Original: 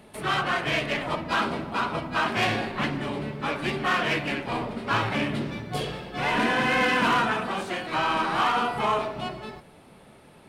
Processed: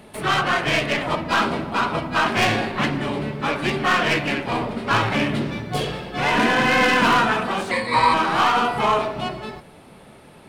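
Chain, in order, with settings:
stylus tracing distortion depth 0.041 ms
0:07.71–0:08.14: EQ curve with evenly spaced ripples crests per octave 0.96, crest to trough 17 dB
level +5.5 dB

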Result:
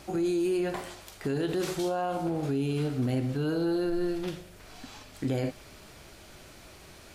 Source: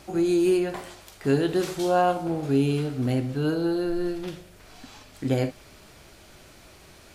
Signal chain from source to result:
brickwall limiter −21.5 dBFS, peak gain reduction 11 dB

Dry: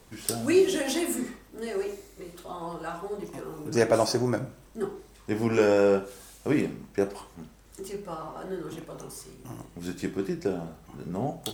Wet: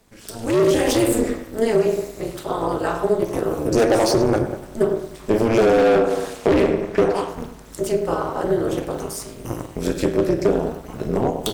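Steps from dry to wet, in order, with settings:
0:05.78–0:07.29: mid-hump overdrive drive 15 dB, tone 1,700 Hz, clips at −11 dBFS
tape delay 100 ms, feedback 56%, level −12 dB, low-pass 2,800 Hz
hard clipping −25 dBFS, distortion −6 dB
downward compressor 2.5 to 1, threshold −32 dBFS, peak gain reduction 4 dB
amplitude modulation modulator 220 Hz, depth 95%
automatic gain control gain up to 15.5 dB
dynamic equaliser 420 Hz, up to +7 dB, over −33 dBFS, Q 1.2

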